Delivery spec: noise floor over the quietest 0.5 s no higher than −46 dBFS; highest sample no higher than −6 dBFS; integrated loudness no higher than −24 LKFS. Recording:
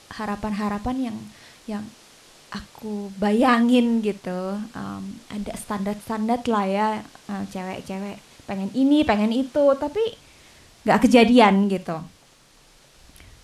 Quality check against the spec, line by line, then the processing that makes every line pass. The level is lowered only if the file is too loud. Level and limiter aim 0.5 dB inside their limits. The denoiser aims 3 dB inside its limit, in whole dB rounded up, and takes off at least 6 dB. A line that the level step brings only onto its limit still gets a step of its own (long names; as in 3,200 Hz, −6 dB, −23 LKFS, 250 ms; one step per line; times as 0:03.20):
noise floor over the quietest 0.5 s −54 dBFS: in spec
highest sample −2.5 dBFS: out of spec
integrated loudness −22.0 LKFS: out of spec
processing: level −2.5 dB
brickwall limiter −6.5 dBFS